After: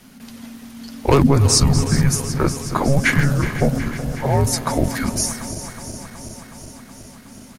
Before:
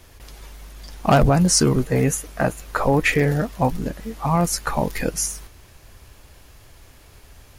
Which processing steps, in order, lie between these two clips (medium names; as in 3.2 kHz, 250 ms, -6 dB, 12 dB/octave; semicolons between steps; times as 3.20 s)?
backward echo that repeats 185 ms, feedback 84%, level -13 dB; frequency shift -280 Hz; delay 417 ms -18 dB; trim +2 dB